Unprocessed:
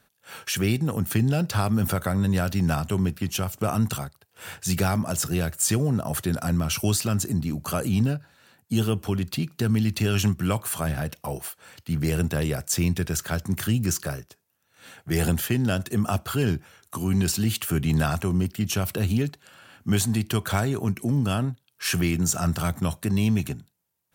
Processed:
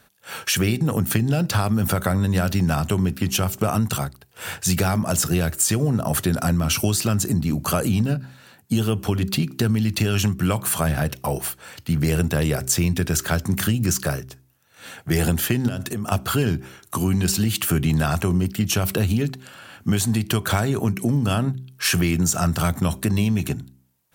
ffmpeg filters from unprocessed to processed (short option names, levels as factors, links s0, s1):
-filter_complex "[0:a]asettb=1/sr,asplit=3[s0][s1][s2];[s0]atrim=end=15.684[s3];[s1]atrim=start=15.68:end=16.12,asetpts=PTS-STARTPTS,afade=t=in:d=0.004:c=qsin,afade=t=out:st=0.436:d=0.004:c=qsin,acompressor=threshold=0.0316:ratio=16:attack=3.2:release=140:knee=1:detection=peak[s4];[s2]atrim=start=16.116[s5];[s3][s4]acrossfade=d=0.004:c1=hsin:c2=qsin[s6];[s6][s5]acrossfade=d=0.004:c1=qsin:c2=hsin,bandreject=f=64.74:t=h:w=4,bandreject=f=129.48:t=h:w=4,bandreject=f=194.22:t=h:w=4,bandreject=f=258.96:t=h:w=4,bandreject=f=323.7:t=h:w=4,bandreject=f=388.44:t=h:w=4,acompressor=threshold=0.0631:ratio=6,volume=2.37"